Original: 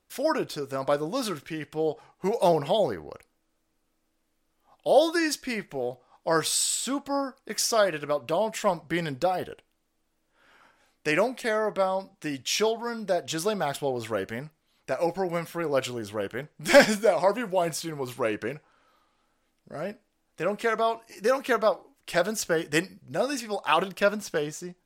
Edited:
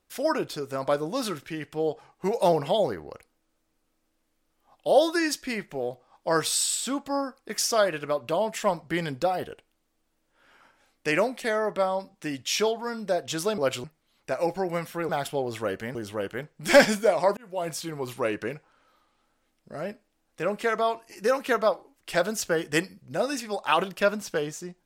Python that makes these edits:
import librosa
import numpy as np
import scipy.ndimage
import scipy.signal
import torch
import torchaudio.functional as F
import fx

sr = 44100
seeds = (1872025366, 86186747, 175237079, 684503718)

y = fx.edit(x, sr, fx.swap(start_s=13.58, length_s=0.86, other_s=15.69, other_length_s=0.26),
    fx.fade_in_span(start_s=17.37, length_s=0.63, curve='qsin'), tone=tone)